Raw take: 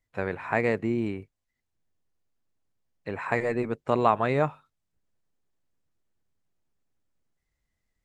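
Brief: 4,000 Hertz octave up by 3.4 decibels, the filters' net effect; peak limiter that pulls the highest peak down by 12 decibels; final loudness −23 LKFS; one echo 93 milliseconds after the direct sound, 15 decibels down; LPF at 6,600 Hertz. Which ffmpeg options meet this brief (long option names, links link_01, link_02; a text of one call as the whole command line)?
ffmpeg -i in.wav -af "lowpass=6600,equalizer=frequency=4000:width_type=o:gain=4.5,alimiter=limit=-19.5dB:level=0:latency=1,aecho=1:1:93:0.178,volume=9dB" out.wav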